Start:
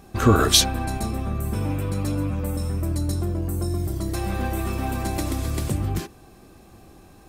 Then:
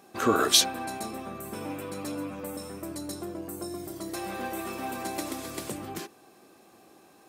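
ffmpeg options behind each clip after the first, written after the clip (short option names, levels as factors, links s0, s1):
-af "highpass=300,volume=0.668"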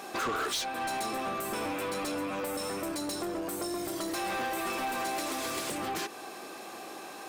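-filter_complex "[0:a]acompressor=threshold=0.01:ratio=3,asplit=2[s0][s1];[s1]highpass=f=720:p=1,volume=14.1,asoftclip=type=tanh:threshold=0.0596[s2];[s0][s2]amix=inputs=2:normalize=0,lowpass=f=6100:p=1,volume=0.501"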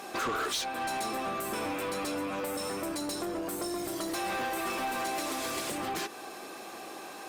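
-ar 48000 -c:a libopus -b:a 48k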